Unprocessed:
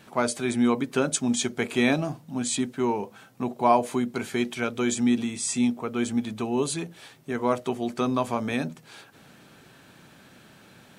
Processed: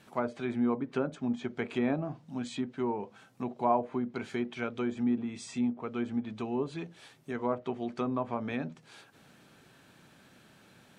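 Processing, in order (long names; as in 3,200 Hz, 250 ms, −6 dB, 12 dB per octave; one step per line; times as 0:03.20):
treble cut that deepens with the level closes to 1,300 Hz, closed at −20.5 dBFS
level −6.5 dB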